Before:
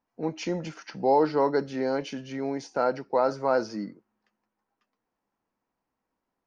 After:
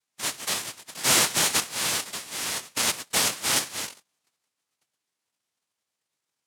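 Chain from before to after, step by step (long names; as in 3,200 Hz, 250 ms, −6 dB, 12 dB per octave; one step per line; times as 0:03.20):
cochlear-implant simulation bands 1
formants moved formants +4 semitones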